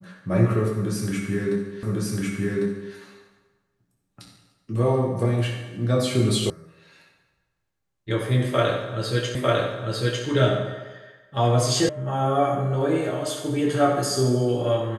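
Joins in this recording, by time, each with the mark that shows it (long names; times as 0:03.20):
0:01.83: the same again, the last 1.1 s
0:06.50: cut off before it has died away
0:09.35: the same again, the last 0.9 s
0:11.89: cut off before it has died away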